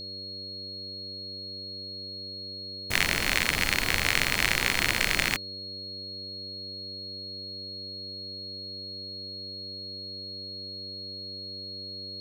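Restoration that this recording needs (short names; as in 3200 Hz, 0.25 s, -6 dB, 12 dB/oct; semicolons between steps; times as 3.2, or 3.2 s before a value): de-hum 95.7 Hz, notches 6; notch 4300 Hz, Q 30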